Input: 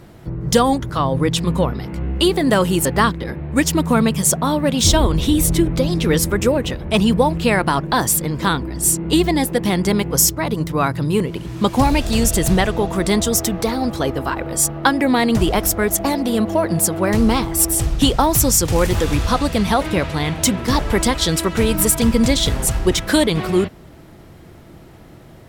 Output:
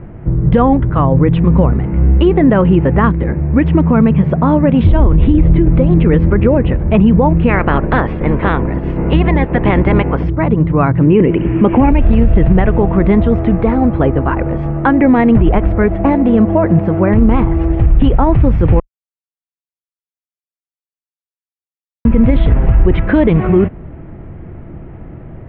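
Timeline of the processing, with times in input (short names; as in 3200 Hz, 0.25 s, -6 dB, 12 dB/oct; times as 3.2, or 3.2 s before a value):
7.48–10.23 spectral limiter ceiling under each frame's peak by 16 dB
11.01–11.91 EQ curve 140 Hz 0 dB, 310 Hz +10 dB, 1100 Hz +4 dB, 2900 Hz +12 dB, 6200 Hz -27 dB
18.8–22.05 mute
whole clip: steep low-pass 2600 Hz 36 dB/oct; tilt -2.5 dB/oct; limiter -6 dBFS; gain +4.5 dB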